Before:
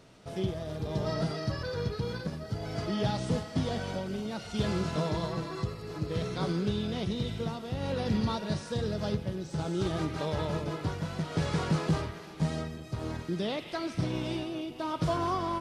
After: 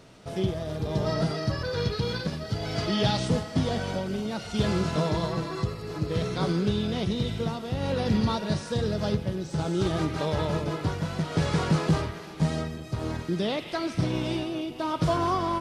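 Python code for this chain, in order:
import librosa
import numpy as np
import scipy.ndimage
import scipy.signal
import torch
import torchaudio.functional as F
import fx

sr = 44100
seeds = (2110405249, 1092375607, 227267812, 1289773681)

y = fx.peak_eq(x, sr, hz=3600.0, db=6.5, octaves=1.7, at=(1.74, 3.28))
y = F.gain(torch.from_numpy(y), 4.5).numpy()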